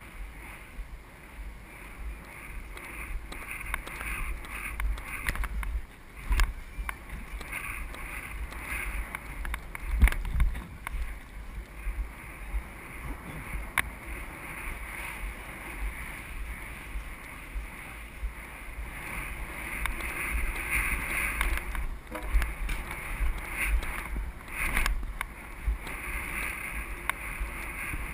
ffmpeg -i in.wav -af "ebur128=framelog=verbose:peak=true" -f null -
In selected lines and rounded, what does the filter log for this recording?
Integrated loudness:
  I:         -35.0 LUFS
  Threshold: -45.2 LUFS
Loudness range:
  LRA:         8.4 LU
  Threshold: -55.1 LUFS
  LRA low:   -40.1 LUFS
  LRA high:  -31.7 LUFS
True peak:
  Peak:       -5.7 dBFS